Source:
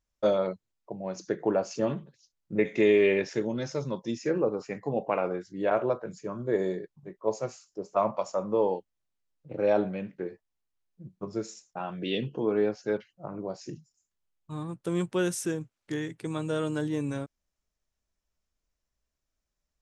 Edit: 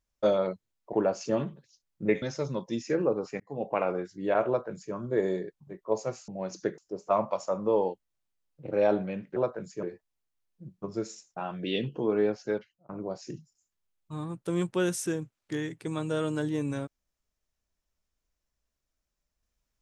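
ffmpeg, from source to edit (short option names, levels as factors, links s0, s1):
-filter_complex "[0:a]asplit=9[s0][s1][s2][s3][s4][s5][s6][s7][s8];[s0]atrim=end=0.932[s9];[s1]atrim=start=1.428:end=2.722[s10];[s2]atrim=start=3.578:end=4.76,asetpts=PTS-STARTPTS,afade=t=out:st=1.178:d=0.004:c=hsin[s11];[s3]atrim=start=4.76:end=7.642,asetpts=PTS-STARTPTS,afade=t=in:d=0.46:c=qsin[s12];[s4]atrim=start=0.928:end=1.432[s13];[s5]atrim=start=7.638:end=10.222[s14];[s6]atrim=start=5.828:end=6.302[s15];[s7]atrim=start=10.218:end=13.28,asetpts=PTS-STARTPTS,afade=t=out:st=2.642:d=0.42[s16];[s8]atrim=start=13.28,asetpts=PTS-STARTPTS,afade=t=in:d=0.004:c=hsin[s17];[s9][s10]acrossfade=d=0.004:c1=hsin:c2=hsin[s18];[s11][s12]concat=n=2:v=0:a=1[s19];[s18][s19]acrossfade=d=0.004:c1=hsin:c2=hsin[s20];[s20][s13]acrossfade=d=0.004:c1=hsin:c2=hsin[s21];[s21][s14]acrossfade=d=0.004:c1=hsin:c2=hsin[s22];[s22][s15]acrossfade=d=0.004:c1=hsin:c2=hsin[s23];[s16][s17]concat=n=2:v=0:a=1[s24];[s23][s24]acrossfade=d=0.004:c1=hsin:c2=hsin"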